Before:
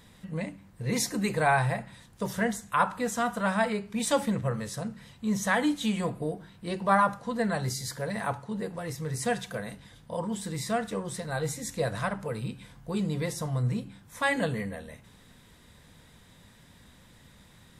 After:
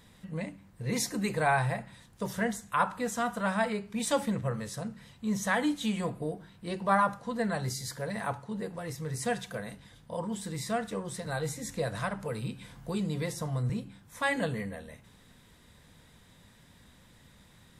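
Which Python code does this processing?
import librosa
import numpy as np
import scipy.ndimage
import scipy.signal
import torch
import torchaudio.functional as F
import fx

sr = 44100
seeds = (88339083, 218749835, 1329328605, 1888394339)

y = fx.band_squash(x, sr, depth_pct=40, at=(11.26, 13.7))
y = F.gain(torch.from_numpy(y), -2.5).numpy()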